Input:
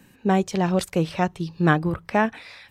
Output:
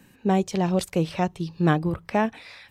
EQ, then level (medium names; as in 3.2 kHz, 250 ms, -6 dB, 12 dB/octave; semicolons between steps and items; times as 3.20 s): dynamic bell 1.5 kHz, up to -6 dB, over -38 dBFS, Q 1.5; -1.0 dB